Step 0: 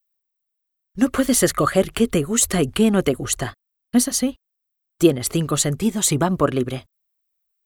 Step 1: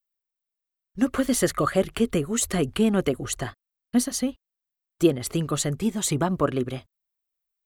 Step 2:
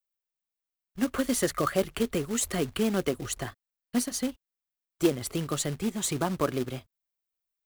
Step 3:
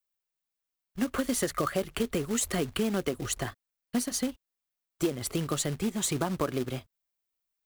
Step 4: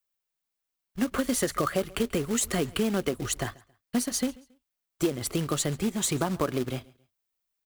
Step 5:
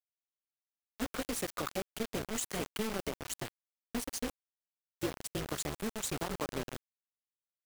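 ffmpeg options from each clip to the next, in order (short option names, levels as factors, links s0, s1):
-af "highshelf=f=5300:g=-4.5,volume=0.596"
-filter_complex "[0:a]acrossover=split=240[s0][s1];[s0]alimiter=level_in=1.19:limit=0.0631:level=0:latency=1:release=134,volume=0.841[s2];[s2][s1]amix=inputs=2:normalize=0,acrusher=bits=3:mode=log:mix=0:aa=0.000001,volume=0.631"
-af "acompressor=threshold=0.0447:ratio=4,volume=1.26"
-af "aecho=1:1:137|274:0.0668|0.0201,volume=1.26"
-af "tremolo=f=220:d=0.71,acrusher=bits=4:mix=0:aa=0.000001,volume=0.447"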